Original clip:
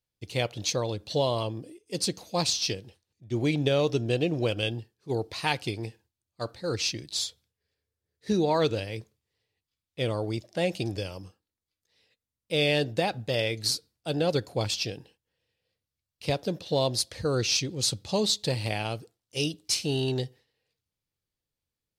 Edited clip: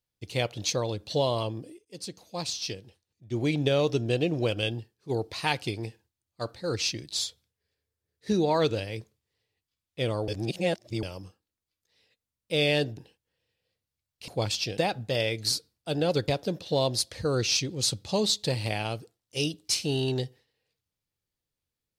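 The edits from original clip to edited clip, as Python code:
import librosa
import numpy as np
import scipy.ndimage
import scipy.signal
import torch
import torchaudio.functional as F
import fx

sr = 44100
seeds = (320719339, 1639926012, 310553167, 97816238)

y = fx.edit(x, sr, fx.fade_in_from(start_s=1.85, length_s=1.84, floor_db=-13.0),
    fx.reverse_span(start_s=10.28, length_s=0.75),
    fx.swap(start_s=12.97, length_s=1.5, other_s=14.97, other_length_s=1.31), tone=tone)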